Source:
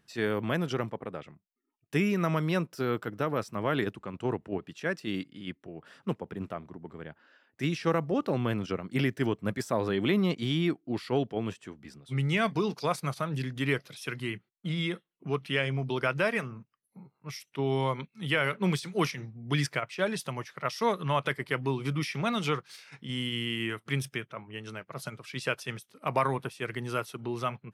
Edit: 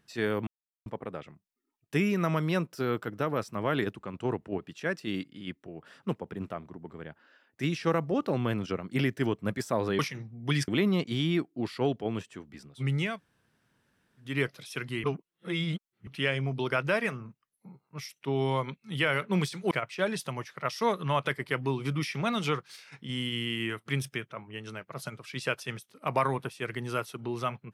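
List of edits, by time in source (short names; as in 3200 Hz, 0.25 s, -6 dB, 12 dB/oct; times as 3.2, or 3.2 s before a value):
0.47–0.86 mute
12.4–13.6 room tone, crossfade 0.24 s
14.35–15.38 reverse
19.02–19.71 move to 9.99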